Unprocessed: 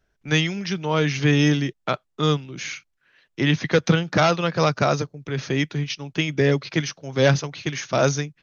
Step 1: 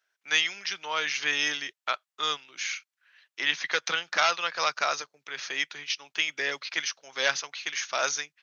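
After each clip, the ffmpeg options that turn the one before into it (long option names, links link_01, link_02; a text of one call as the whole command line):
ffmpeg -i in.wav -af "highpass=1200" out.wav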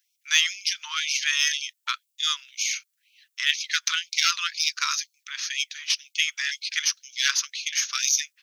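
ffmpeg -i in.wav -af "crystalizer=i=6:c=0,aeval=exprs='1.12*(cos(1*acos(clip(val(0)/1.12,-1,1)))-cos(1*PI/2))+0.0282*(cos(8*acos(clip(val(0)/1.12,-1,1)))-cos(8*PI/2))':channel_layout=same,afftfilt=real='re*gte(b*sr/1024,890*pow(2200/890,0.5+0.5*sin(2*PI*2*pts/sr)))':imag='im*gte(b*sr/1024,890*pow(2200/890,0.5+0.5*sin(2*PI*2*pts/sr)))':win_size=1024:overlap=0.75,volume=-5dB" out.wav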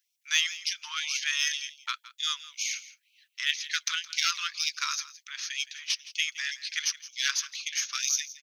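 ffmpeg -i in.wav -af "aecho=1:1:167:0.141,volume=-5dB" out.wav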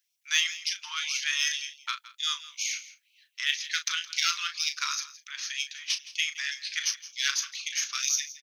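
ffmpeg -i in.wav -filter_complex "[0:a]asplit=2[link_01][link_02];[link_02]adelay=36,volume=-9.5dB[link_03];[link_01][link_03]amix=inputs=2:normalize=0" out.wav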